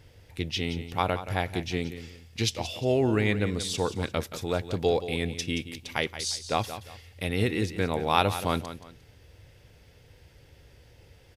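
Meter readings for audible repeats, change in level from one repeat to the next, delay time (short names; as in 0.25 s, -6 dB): 2, -10.5 dB, 0.176 s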